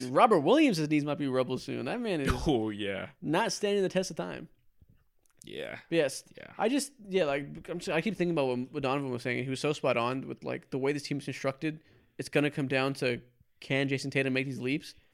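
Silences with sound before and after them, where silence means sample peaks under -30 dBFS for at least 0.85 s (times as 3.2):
4.38–5.42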